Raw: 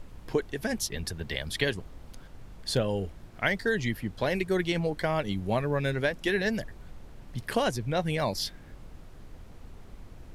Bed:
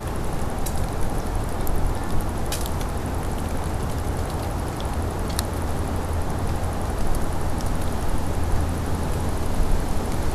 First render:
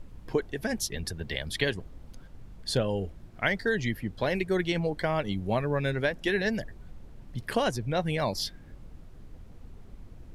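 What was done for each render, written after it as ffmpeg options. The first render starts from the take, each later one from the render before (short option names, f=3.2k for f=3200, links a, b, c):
-af "afftdn=nr=6:nf=-49"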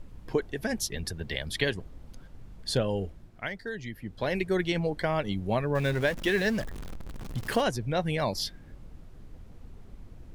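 -filter_complex "[0:a]asettb=1/sr,asplit=3[a][b][c];[a]atrim=end=5.754[d];[b]atrim=start=5.75:end=7.61,asetpts=PTS-STARTPTS,afade=t=in:d=0.004:c=qsin,afade=t=out:st=1.856:d=0.004:c=qsin,aeval=exprs='val(0)+0.5*0.0168*sgn(val(0))':c=same[e];[c]atrim=start=7.606[f];[d][e]acrossfade=d=0.004:c1=hsin:c2=qsin[g];[g][f]acrossfade=d=0.004:c1=qsin:c2=hsin,asplit=3[h][i][j];[h]atrim=end=3.5,asetpts=PTS-STARTPTS,afade=t=out:st=3.02:d=0.48:silence=0.354813[k];[i]atrim=start=3.5:end=3.91,asetpts=PTS-STARTPTS,volume=-9dB[l];[j]atrim=start=3.91,asetpts=PTS-STARTPTS,afade=t=in:d=0.48:silence=0.354813[m];[k][l][m]concat=n=3:v=0:a=1"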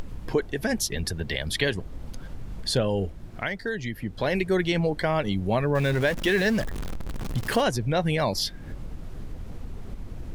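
-filter_complex "[0:a]asplit=2[a][b];[b]alimiter=level_in=0.5dB:limit=-24dB:level=0:latency=1,volume=-0.5dB,volume=0dB[c];[a][c]amix=inputs=2:normalize=0,acompressor=mode=upward:threshold=-27dB:ratio=2.5"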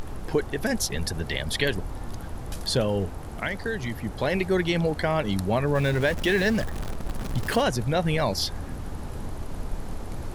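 -filter_complex "[1:a]volume=-12.5dB[a];[0:a][a]amix=inputs=2:normalize=0"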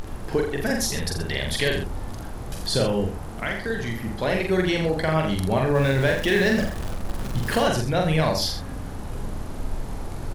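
-filter_complex "[0:a]asplit=2[a][b];[b]adelay=44,volume=-3dB[c];[a][c]amix=inputs=2:normalize=0,asplit=2[d][e];[e]aecho=0:1:83:0.376[f];[d][f]amix=inputs=2:normalize=0"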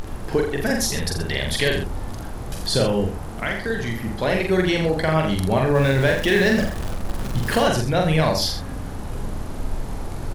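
-af "volume=2.5dB"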